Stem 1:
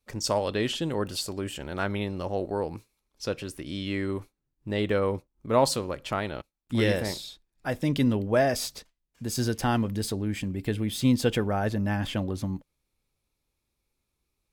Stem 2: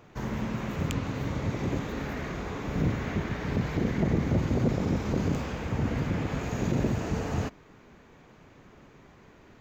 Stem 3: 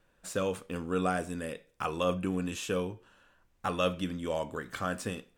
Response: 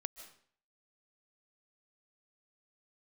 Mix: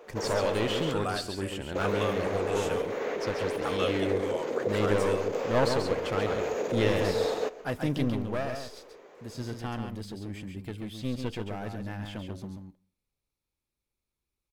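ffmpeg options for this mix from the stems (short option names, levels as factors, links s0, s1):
-filter_complex "[0:a]aeval=exprs='clip(val(0),-1,0.0422)':c=same,acrossover=split=5200[s0][s1];[s1]acompressor=threshold=0.00501:ratio=4:attack=1:release=60[s2];[s0][s2]amix=inputs=2:normalize=0,volume=0.631,afade=t=out:st=7.75:d=0.75:silence=0.421697,asplit=3[s3][s4][s5];[s4]volume=0.447[s6];[s5]volume=0.668[s7];[1:a]alimiter=limit=0.0708:level=0:latency=1:release=24,highpass=f=470:t=q:w=4.9,volume=0.668,asplit=3[s8][s9][s10];[s8]atrim=end=0.92,asetpts=PTS-STARTPTS,afade=t=out:st=0.916:d=0.004:c=hsin[s11];[s9]atrim=start=0.92:end=1.75,asetpts=PTS-STARTPTS,volume=0[s12];[s10]atrim=start=1.75,asetpts=PTS-STARTPTS,afade=t=in:d=0.004:c=hsin[s13];[s11][s12][s13]concat=n=3:v=0:a=1,asplit=3[s14][s15][s16];[s15]volume=0.501[s17];[s16]volume=0.15[s18];[2:a]highpass=540,volume=0.841,asplit=2[s19][s20];[s20]volume=0.133[s21];[3:a]atrim=start_sample=2205[s22];[s6][s17]amix=inputs=2:normalize=0[s23];[s23][s22]afir=irnorm=-1:irlink=0[s24];[s7][s18][s21]amix=inputs=3:normalize=0,aecho=0:1:136:1[s25];[s3][s14][s19][s24][s25]amix=inputs=5:normalize=0"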